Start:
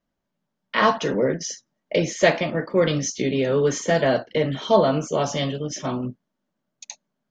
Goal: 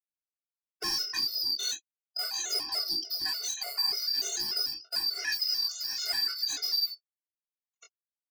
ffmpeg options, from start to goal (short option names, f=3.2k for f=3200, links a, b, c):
-af "afftfilt=real='real(if(lt(b,272),68*(eq(floor(b/68),0)*1+eq(floor(b/68),1)*2+eq(floor(b/68),2)*3+eq(floor(b/68),3)*0)+mod(b,68),b),0)':imag='imag(if(lt(b,272),68*(eq(floor(b/68),0)*1+eq(floor(b/68),1)*2+eq(floor(b/68),2)*3+eq(floor(b/68),3)*0)+mod(b,68),b),0)':win_size=2048:overlap=0.75,agate=range=-56dB:threshold=-33dB:ratio=16:detection=peak,highpass=f=600:p=1,aecho=1:1:2.8:0.93,acompressor=threshold=-24dB:ratio=5,atempo=0.88,asoftclip=type=hard:threshold=-29dB,flanger=delay=19:depth=5:speed=0.42,afftfilt=real='re*gt(sin(2*PI*3.4*pts/sr)*(1-2*mod(floor(b*sr/1024/380),2)),0)':imag='im*gt(sin(2*PI*3.4*pts/sr)*(1-2*mod(floor(b*sr/1024/380),2)),0)':win_size=1024:overlap=0.75,volume=6.5dB"